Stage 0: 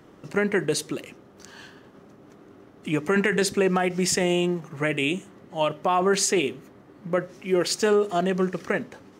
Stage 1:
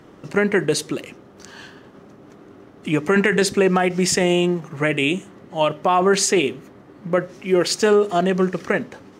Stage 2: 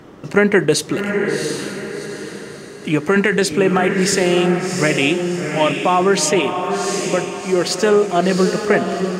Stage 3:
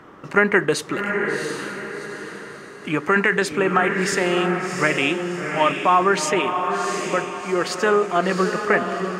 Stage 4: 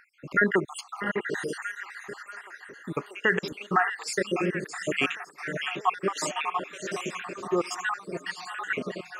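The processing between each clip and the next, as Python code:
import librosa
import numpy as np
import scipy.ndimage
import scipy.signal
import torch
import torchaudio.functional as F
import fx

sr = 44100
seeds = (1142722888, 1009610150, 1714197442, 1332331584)

y1 = fx.high_shelf(x, sr, hz=11000.0, db=-6.0)
y1 = y1 * librosa.db_to_amplitude(5.0)
y2 = fx.rider(y1, sr, range_db=10, speed_s=2.0)
y2 = fx.echo_diffused(y2, sr, ms=724, feedback_pct=41, wet_db=-5.0)
y2 = y2 * librosa.db_to_amplitude(1.5)
y3 = fx.curve_eq(y2, sr, hz=(140.0, 690.0, 1200.0, 4400.0), db=(0, 4, 12, 0))
y3 = y3 * librosa.db_to_amplitude(-8.0)
y4 = fx.spec_dropout(y3, sr, seeds[0], share_pct=69)
y4 = fx.echo_stepped(y4, sr, ms=638, hz=2500.0, octaves=-0.7, feedback_pct=70, wet_db=-9)
y4 = y4 * librosa.db_to_amplitude(-3.5)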